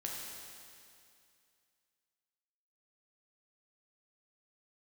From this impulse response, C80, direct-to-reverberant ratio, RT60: 1.5 dB, -3.0 dB, 2.4 s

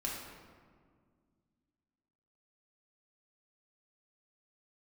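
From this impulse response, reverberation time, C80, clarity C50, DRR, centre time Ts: 1.9 s, 3.5 dB, 1.5 dB, -3.5 dB, 76 ms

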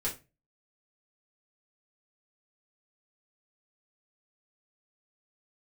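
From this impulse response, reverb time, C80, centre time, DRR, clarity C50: 0.25 s, 19.0 dB, 19 ms, -6.5 dB, 11.0 dB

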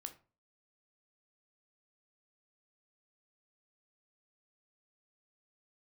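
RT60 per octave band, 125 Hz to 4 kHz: 0.45, 0.45, 0.40, 0.35, 0.30, 0.25 s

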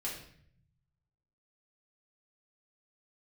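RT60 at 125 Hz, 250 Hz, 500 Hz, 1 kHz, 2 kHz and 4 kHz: 1.6, 1.1, 0.65, 0.55, 0.65, 0.55 s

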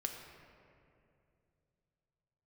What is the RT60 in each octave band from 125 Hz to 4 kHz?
3.9, 3.1, 2.9, 2.3, 2.1, 1.4 s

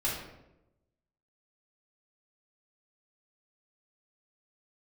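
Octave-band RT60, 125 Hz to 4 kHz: 1.2, 1.1, 1.0, 0.80, 0.70, 0.55 s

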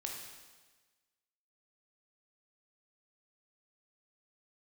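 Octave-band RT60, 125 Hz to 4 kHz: 1.3, 1.3, 1.3, 1.3, 1.3, 1.3 s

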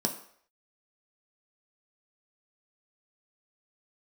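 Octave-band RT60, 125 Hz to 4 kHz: 0.35, 0.45, 0.60, 0.60, 0.60, 0.55 s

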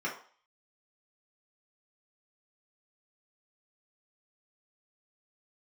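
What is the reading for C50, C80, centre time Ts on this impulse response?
8.0 dB, 13.0 dB, 24 ms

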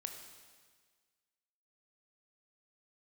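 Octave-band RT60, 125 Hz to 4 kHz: 1.6, 1.6, 1.6, 1.6, 1.6, 1.6 s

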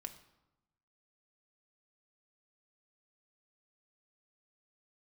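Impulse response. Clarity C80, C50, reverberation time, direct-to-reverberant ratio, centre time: 14.5 dB, 12.5 dB, 0.95 s, 5.0 dB, 9 ms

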